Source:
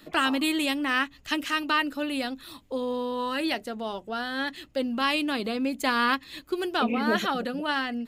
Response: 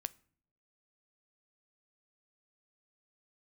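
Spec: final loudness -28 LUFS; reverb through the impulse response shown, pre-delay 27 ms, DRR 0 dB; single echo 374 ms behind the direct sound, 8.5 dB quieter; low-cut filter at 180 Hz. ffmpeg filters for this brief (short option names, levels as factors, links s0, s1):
-filter_complex "[0:a]highpass=180,aecho=1:1:374:0.376,asplit=2[s0][s1];[1:a]atrim=start_sample=2205,adelay=27[s2];[s1][s2]afir=irnorm=-1:irlink=0,volume=1.26[s3];[s0][s3]amix=inputs=2:normalize=0,volume=0.668"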